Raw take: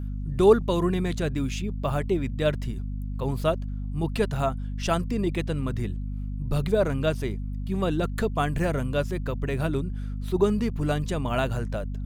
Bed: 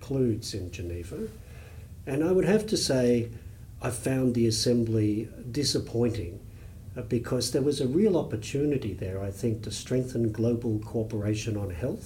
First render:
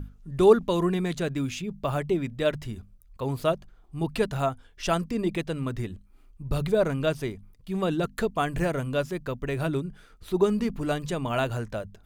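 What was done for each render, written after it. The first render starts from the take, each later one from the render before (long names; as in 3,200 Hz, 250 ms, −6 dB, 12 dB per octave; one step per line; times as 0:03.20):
mains-hum notches 50/100/150/200/250 Hz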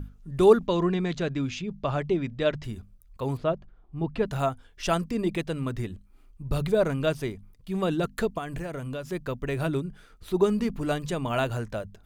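0:00.67–0:02.64: low-pass filter 6,200 Hz 24 dB per octave
0:03.37–0:04.26: head-to-tape spacing loss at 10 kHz 25 dB
0:08.38–0:09.11: downward compressor, threshold −30 dBFS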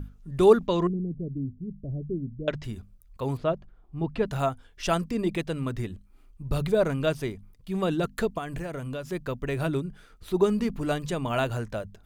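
0:00.87–0:02.48: Gaussian smoothing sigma 24 samples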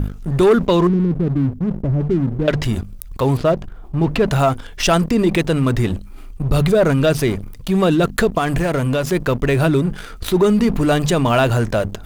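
leveller curve on the samples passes 2
envelope flattener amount 50%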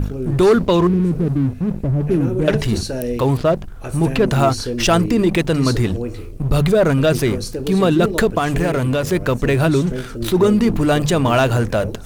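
mix in bed 0 dB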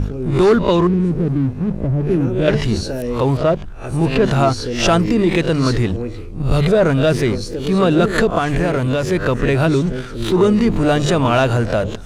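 peak hold with a rise ahead of every peak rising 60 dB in 0.31 s
high-frequency loss of the air 51 metres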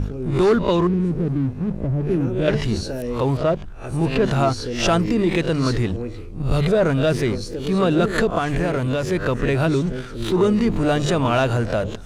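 level −4 dB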